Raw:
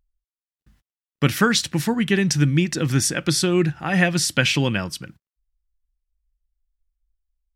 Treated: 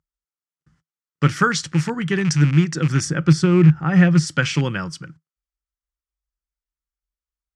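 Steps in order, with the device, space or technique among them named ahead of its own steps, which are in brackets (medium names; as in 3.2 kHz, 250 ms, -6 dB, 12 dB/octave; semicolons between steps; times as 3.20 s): car door speaker with a rattle (rattle on loud lows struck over -21 dBFS, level -17 dBFS; cabinet simulation 93–8000 Hz, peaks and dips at 160 Hz +10 dB, 220 Hz -7 dB, 670 Hz -6 dB, 1.3 kHz +7 dB, 2.6 kHz -6 dB, 3.8 kHz -8 dB); 3.05–4.27 s: tilt EQ -2 dB/octave; trim -1 dB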